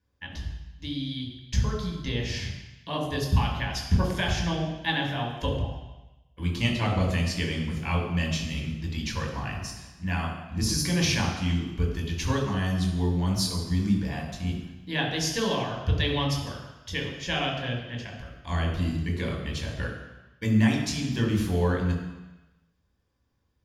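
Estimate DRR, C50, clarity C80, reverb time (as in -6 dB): -1.5 dB, 4.0 dB, 6.5 dB, 1.0 s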